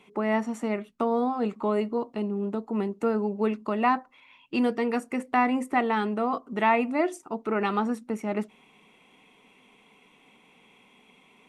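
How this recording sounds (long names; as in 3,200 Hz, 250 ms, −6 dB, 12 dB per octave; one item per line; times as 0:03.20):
background noise floor −60 dBFS
spectral slope −2.0 dB per octave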